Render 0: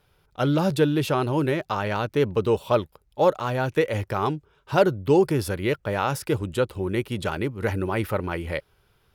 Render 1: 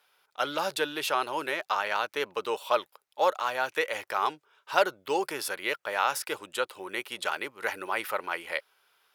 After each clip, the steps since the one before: high-pass 850 Hz 12 dB/octave; trim +1.5 dB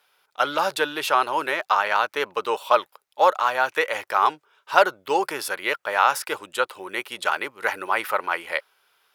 dynamic bell 1.1 kHz, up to +6 dB, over -39 dBFS, Q 0.75; trim +3 dB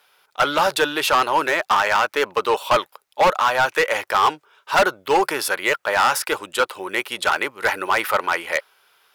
hard clipper -17.5 dBFS, distortion -8 dB; trim +6 dB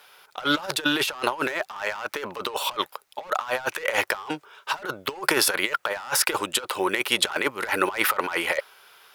compressor with a negative ratio -25 dBFS, ratio -0.5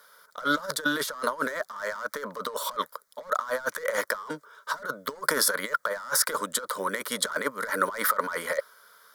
static phaser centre 530 Hz, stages 8

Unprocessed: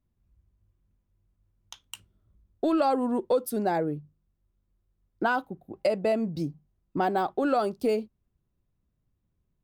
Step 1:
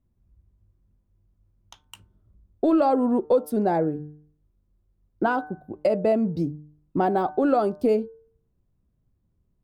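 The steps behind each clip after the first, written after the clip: tilt shelf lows +6 dB, about 1.4 kHz; de-hum 150.4 Hz, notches 12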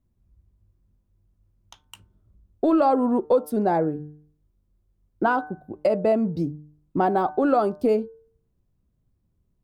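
dynamic bell 1.1 kHz, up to +4 dB, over -35 dBFS, Q 1.6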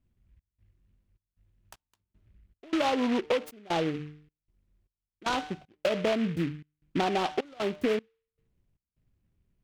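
compression 5:1, threshold -21 dBFS, peak gain reduction 6.5 dB; trance gate "xx.xxx.xx..xx.xx" 77 bpm -24 dB; delay time shaken by noise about 2 kHz, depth 0.09 ms; trim -2.5 dB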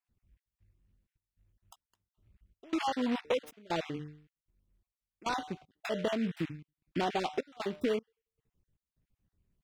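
random holes in the spectrogram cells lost 26%; trim -3.5 dB

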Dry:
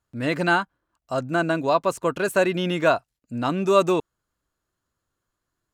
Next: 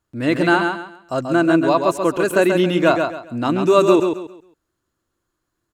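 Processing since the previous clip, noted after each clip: peaking EQ 330 Hz +8 dB 0.38 oct; on a send: feedback delay 135 ms, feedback 28%, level -5.5 dB; on the sum: trim +2.5 dB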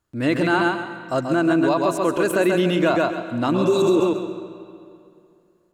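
spectral replace 3.57–4.03 s, 520–3600 Hz after; peak limiter -10.5 dBFS, peak gain reduction 7.5 dB; on a send at -12 dB: reverberation RT60 2.5 s, pre-delay 90 ms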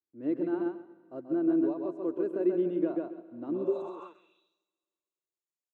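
band-pass sweep 350 Hz -> 7.7 kHz, 3.59–4.68 s; upward expansion 1.5:1, over -40 dBFS; trim -5 dB

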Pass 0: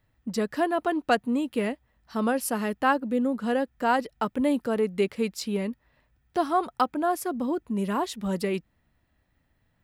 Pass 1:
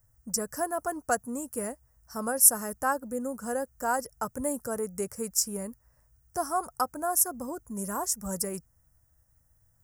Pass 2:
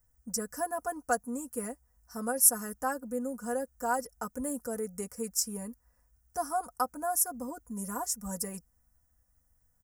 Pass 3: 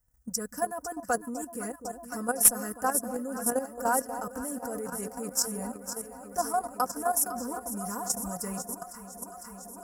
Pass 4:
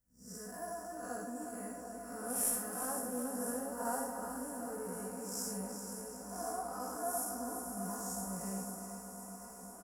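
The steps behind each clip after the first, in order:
FFT filter 110 Hz 0 dB, 210 Hz -13 dB, 350 Hz -15 dB, 530 Hz -8 dB, 1 kHz -9 dB, 1.5 kHz -7 dB, 2.2 kHz -20 dB, 3.8 kHz -30 dB, 5.5 kHz +6 dB, 8.3 kHz +11 dB; trim +4 dB
comb 4.1 ms, depth 74%; trim -5.5 dB
echo whose repeats swap between lows and highs 252 ms, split 960 Hz, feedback 89%, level -10 dB; one-sided clip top -16.5 dBFS, bottom -11.5 dBFS; level held to a coarse grid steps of 10 dB; trim +5.5 dB
spectral blur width 191 ms; doubling 16 ms -3 dB; feedback delay 371 ms, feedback 58%, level -9 dB; trim -6.5 dB

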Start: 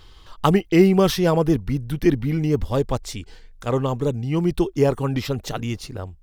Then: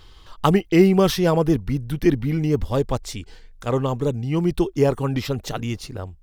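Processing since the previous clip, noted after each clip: no audible change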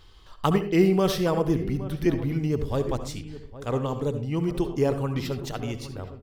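echo from a far wall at 140 m, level -15 dB; reverberation RT60 0.35 s, pre-delay 64 ms, DRR 9 dB; trim -5.5 dB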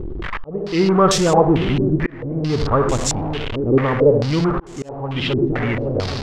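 jump at every zero crossing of -26 dBFS; slow attack 588 ms; step-sequenced low-pass 4.5 Hz 340–7300 Hz; trim +5 dB

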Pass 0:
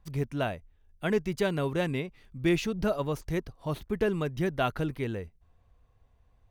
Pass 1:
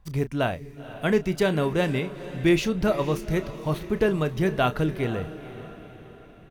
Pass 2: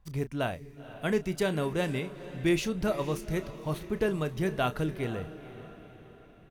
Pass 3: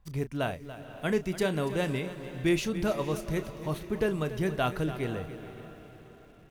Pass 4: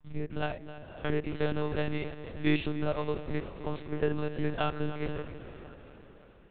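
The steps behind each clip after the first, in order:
doubling 32 ms -12.5 dB; echo that smears into a reverb 490 ms, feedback 49%, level -14 dB; trim +5 dB
dynamic bell 9.6 kHz, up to +6 dB, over -51 dBFS, Q 0.76; trim -6 dB
bit-crushed delay 286 ms, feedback 35%, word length 9-bit, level -13.5 dB
spectrogram pixelated in time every 50 ms; monotone LPC vocoder at 8 kHz 150 Hz; de-hum 159.5 Hz, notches 13

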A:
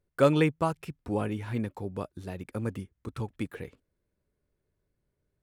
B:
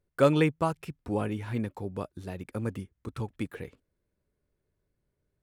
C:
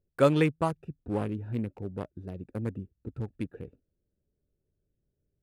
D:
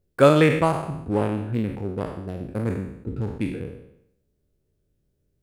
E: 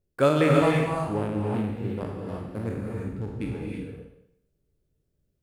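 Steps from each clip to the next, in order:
no audible change
local Wiener filter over 41 samples
spectral sustain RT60 0.77 s; trim +6 dB
gated-style reverb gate 370 ms rising, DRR 0 dB; trim -6 dB

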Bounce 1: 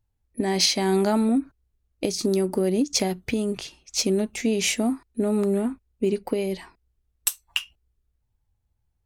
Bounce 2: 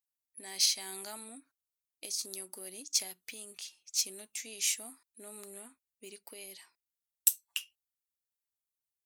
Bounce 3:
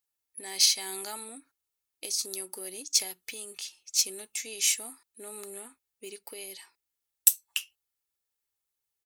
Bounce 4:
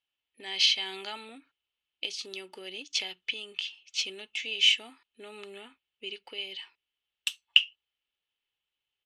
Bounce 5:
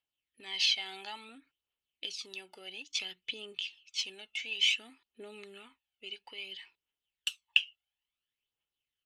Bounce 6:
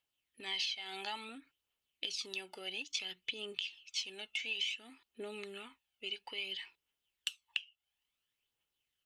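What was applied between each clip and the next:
differentiator; trim -3 dB
comb 2.3 ms, depth 34%; trim +5 dB
resonant low-pass 3 kHz, resonance Q 6.3; trim -1 dB
phaser 0.58 Hz, delay 1.5 ms, feedback 54%; trim -5.5 dB
compression 10:1, threshold -38 dBFS, peak gain reduction 20 dB; trim +3.5 dB

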